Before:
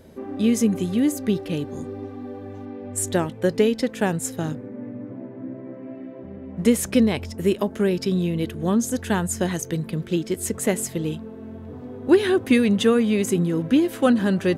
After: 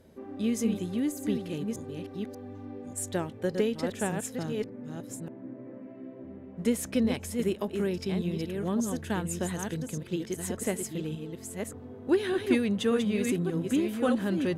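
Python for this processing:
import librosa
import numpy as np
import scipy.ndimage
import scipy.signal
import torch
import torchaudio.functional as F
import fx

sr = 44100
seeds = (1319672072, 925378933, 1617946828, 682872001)

y = fx.reverse_delay(x, sr, ms=587, wet_db=-5.0)
y = fx.cheby_harmonics(y, sr, harmonics=(8,), levels_db=(-41,), full_scale_db=-3.5)
y = y * 10.0 ** (-9.0 / 20.0)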